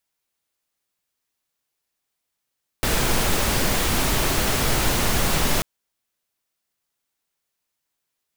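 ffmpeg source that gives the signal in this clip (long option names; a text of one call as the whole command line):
ffmpeg -f lavfi -i "anoisesrc=color=pink:amplitude=0.484:duration=2.79:sample_rate=44100:seed=1" out.wav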